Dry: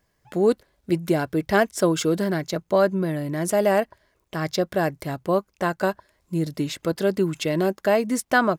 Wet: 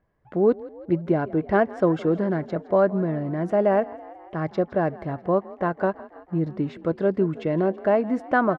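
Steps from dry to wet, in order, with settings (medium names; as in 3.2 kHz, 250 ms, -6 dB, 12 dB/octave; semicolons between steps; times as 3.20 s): low-pass 1.4 kHz 12 dB/octave; on a send: frequency-shifting echo 164 ms, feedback 63%, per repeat +40 Hz, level -19.5 dB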